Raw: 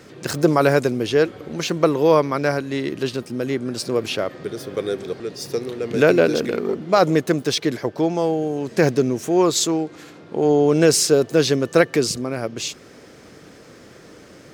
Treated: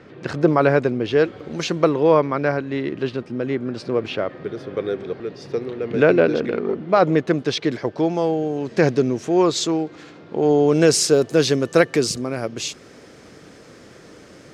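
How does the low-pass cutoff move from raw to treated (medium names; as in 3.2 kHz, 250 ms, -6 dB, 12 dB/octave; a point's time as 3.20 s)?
1.00 s 2.8 kHz
1.59 s 7.6 kHz
2.09 s 2.8 kHz
6.97 s 2.8 kHz
7.87 s 5.3 kHz
10.41 s 5.3 kHz
11.13 s 11 kHz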